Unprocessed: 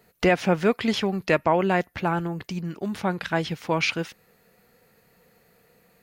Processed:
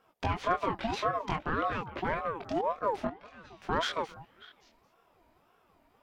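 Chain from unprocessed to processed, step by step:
low-pass filter 3,800 Hz 6 dB per octave
low-shelf EQ 350 Hz +6 dB
brickwall limiter −16 dBFS, peak gain reduction 10 dB
0:03.07–0:03.62: tuned comb filter 130 Hz, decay 1.1 s, harmonics all, mix 90%
echo through a band-pass that steps 198 ms, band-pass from 320 Hz, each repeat 1.4 octaves, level −10.5 dB
chorus effect 0.52 Hz, delay 18.5 ms, depth 6.4 ms
harmonic generator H 7 −29 dB, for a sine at −15.5 dBFS
ring modulator whose carrier an LFO sweeps 680 Hz, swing 35%, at 1.8 Hz

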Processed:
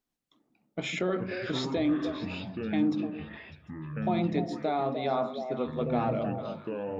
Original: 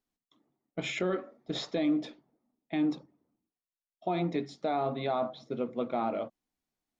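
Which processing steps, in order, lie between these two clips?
echo through a band-pass that steps 150 ms, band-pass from 200 Hz, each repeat 1.4 octaves, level −2 dB
delay with pitch and tempo change per echo 104 ms, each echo −6 semitones, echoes 2, each echo −6 dB
level +1 dB

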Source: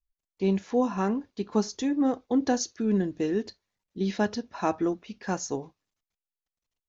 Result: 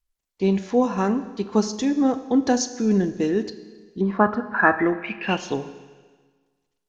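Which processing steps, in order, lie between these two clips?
0:04.00–0:05.53: low-pass with resonance 1,000 Hz → 3,400 Hz, resonance Q 16
four-comb reverb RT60 1.5 s, combs from 29 ms, DRR 12 dB
level +5 dB
SBC 128 kbit/s 48,000 Hz

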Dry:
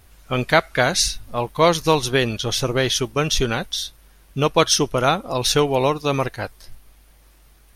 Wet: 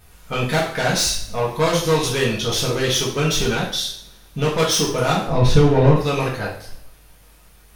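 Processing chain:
soft clipping −18 dBFS, distortion −8 dB
0:05.27–0:05.96: RIAA equalisation playback
coupled-rooms reverb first 0.52 s, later 1.6 s, from −23 dB, DRR −4.5 dB
level −1.5 dB

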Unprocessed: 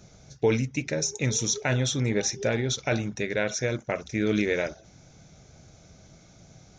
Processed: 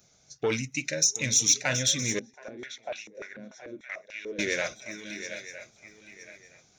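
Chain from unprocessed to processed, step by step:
soft clipping −15.5 dBFS, distortion −20 dB
spectral tilt +2.5 dB per octave
feedback echo with a long and a short gap by turns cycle 965 ms, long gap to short 3 to 1, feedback 39%, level −9.5 dB
noise reduction from a noise print of the clip's start 10 dB
0:02.19–0:04.39: band-pass on a step sequencer 6.8 Hz 230–2,700 Hz

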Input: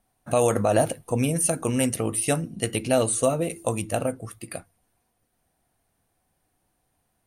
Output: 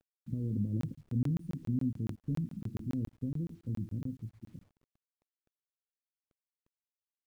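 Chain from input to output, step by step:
0:02.15–0:04.53: gap after every zero crossing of 0.073 ms
inverse Chebyshev low-pass filter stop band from 660 Hz, stop band 50 dB
bit reduction 11 bits
regular buffer underruns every 0.14 s, samples 1,024, zero, from 0:00.81
level −4 dB

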